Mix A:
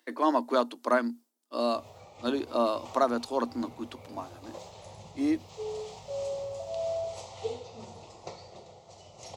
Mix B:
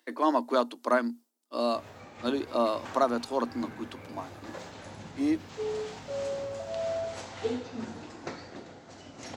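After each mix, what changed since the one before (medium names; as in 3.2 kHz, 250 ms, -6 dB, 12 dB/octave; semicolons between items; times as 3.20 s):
background: remove static phaser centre 660 Hz, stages 4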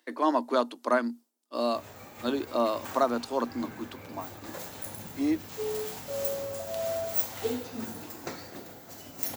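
background: remove Bessel low-pass 4.7 kHz, order 8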